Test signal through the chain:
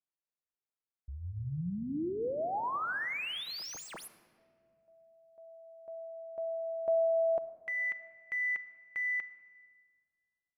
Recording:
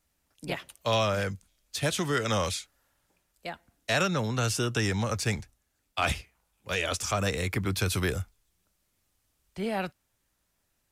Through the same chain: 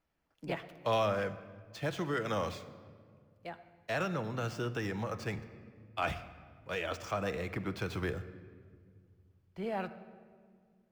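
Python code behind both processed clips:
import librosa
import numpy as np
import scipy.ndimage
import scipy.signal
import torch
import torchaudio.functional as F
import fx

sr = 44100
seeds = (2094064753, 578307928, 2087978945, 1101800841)

y = scipy.signal.medfilt(x, 5)
y = fx.high_shelf(y, sr, hz=2300.0, db=-11.0)
y = fx.room_shoebox(y, sr, seeds[0], volume_m3=3100.0, walls='mixed', distance_m=0.65)
y = fx.rider(y, sr, range_db=5, speed_s=2.0)
y = fx.low_shelf(y, sr, hz=200.0, db=-7.5)
y = fx.notch(y, sr, hz=3800.0, q=20.0)
y = F.gain(torch.from_numpy(y), -3.5).numpy()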